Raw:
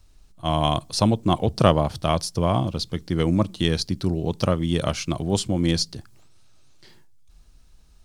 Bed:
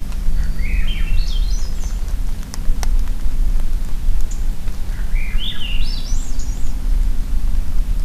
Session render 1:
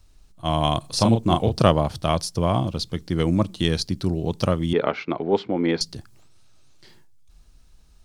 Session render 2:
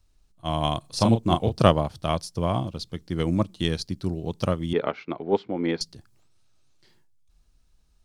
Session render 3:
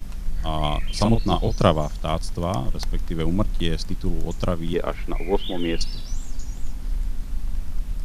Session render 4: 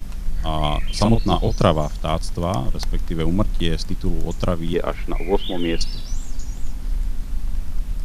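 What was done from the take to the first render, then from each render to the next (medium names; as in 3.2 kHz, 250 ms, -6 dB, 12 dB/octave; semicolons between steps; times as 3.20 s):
0.80–1.62 s: doubling 35 ms -4.5 dB; 4.73–5.81 s: cabinet simulation 250–3300 Hz, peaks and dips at 260 Hz +4 dB, 430 Hz +10 dB, 850 Hz +7 dB, 1.4 kHz +5 dB, 2.1 kHz +6 dB, 3 kHz -6 dB
upward expansion 1.5:1, over -32 dBFS
add bed -9 dB
trim +2.5 dB; peak limiter -1 dBFS, peak gain reduction 2 dB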